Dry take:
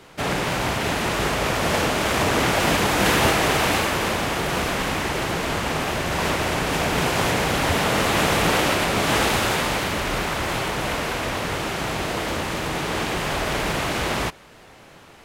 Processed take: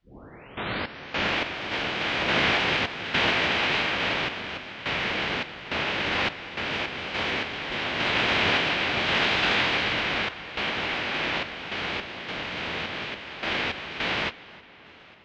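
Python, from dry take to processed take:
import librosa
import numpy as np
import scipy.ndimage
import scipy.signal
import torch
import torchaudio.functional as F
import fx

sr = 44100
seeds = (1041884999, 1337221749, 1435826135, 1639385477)

y = fx.tape_start_head(x, sr, length_s=1.36)
y = fx.weighting(y, sr, curve='D')
y = fx.pitch_keep_formants(y, sr, semitones=-11.0)
y = fx.tremolo_random(y, sr, seeds[0], hz=3.5, depth_pct=85)
y = fx.quant_dither(y, sr, seeds[1], bits=12, dither='triangular')
y = fx.air_absorb(y, sr, metres=260.0)
y = fx.echo_filtered(y, sr, ms=314, feedback_pct=66, hz=4500.0, wet_db=-20.0)
y = y * librosa.db_to_amplitude(-1.0)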